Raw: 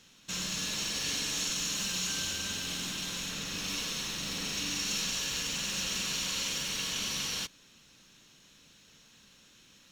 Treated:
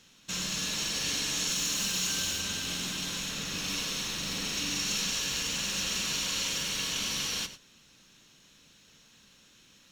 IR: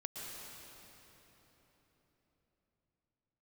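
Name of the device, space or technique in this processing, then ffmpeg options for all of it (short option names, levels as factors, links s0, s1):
keyed gated reverb: -filter_complex "[0:a]asplit=3[s0][s1][s2];[1:a]atrim=start_sample=2205[s3];[s1][s3]afir=irnorm=-1:irlink=0[s4];[s2]apad=whole_len=437113[s5];[s4][s5]sidechaingate=range=0.0224:threshold=0.00447:ratio=16:detection=peak,volume=0.376[s6];[s0][s6]amix=inputs=2:normalize=0,asettb=1/sr,asplit=3[s7][s8][s9];[s7]atrim=end=1.484[s10];[s8]atrim=start=1.48:end=2.41,asetpts=PTS-STARTPTS,afade=t=in:d=0.004:c=qsin,afade=t=out:st=0.926:d=0.004:c=qsin,highshelf=f=11000:g=6[s11];[s9]atrim=start=2.406[s12];[s10][s11]acrossfade=d=0.004:c1=hsin:c2=qsin[s13];[s13][s12]acrossfade=d=0.004:c1=qsin:c2=hsin"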